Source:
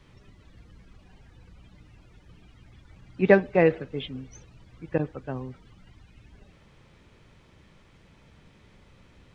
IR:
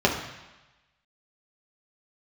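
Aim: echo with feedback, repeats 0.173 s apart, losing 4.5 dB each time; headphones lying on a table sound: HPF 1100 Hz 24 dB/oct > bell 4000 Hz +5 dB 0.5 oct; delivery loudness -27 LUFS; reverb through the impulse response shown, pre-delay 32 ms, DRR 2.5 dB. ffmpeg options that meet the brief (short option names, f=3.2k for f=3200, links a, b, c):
-filter_complex "[0:a]aecho=1:1:173|346|519|692|865|1038|1211|1384|1557:0.596|0.357|0.214|0.129|0.0772|0.0463|0.0278|0.0167|0.01,asplit=2[a][b];[1:a]atrim=start_sample=2205,adelay=32[c];[b][c]afir=irnorm=-1:irlink=0,volume=-19.5dB[d];[a][d]amix=inputs=2:normalize=0,highpass=f=1.1k:w=0.5412,highpass=f=1.1k:w=1.3066,equalizer=f=4k:t=o:w=0.5:g=5,volume=5.5dB"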